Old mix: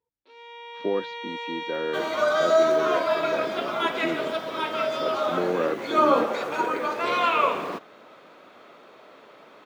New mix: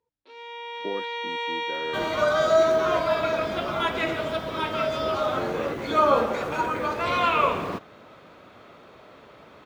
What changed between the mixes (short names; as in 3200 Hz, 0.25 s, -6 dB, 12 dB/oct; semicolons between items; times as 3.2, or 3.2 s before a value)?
speech -6.0 dB; first sound +4.5 dB; second sound: remove HPF 260 Hz 12 dB/oct